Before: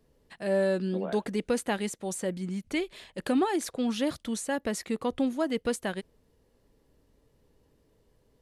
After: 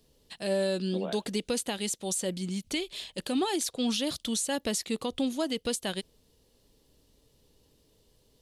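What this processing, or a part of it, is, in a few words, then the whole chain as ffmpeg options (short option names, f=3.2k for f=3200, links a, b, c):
over-bright horn tweeter: -af "highshelf=f=2.5k:t=q:w=1.5:g=9,alimiter=limit=-20dB:level=0:latency=1:release=189"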